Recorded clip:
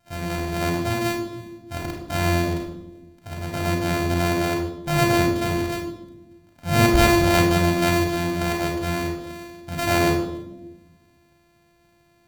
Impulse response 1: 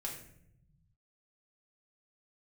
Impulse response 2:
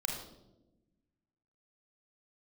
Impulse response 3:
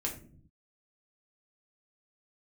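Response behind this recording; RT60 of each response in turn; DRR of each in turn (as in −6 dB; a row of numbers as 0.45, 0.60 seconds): 2; 0.70, 1.0, 0.50 seconds; −3.0, −0.5, −1.5 decibels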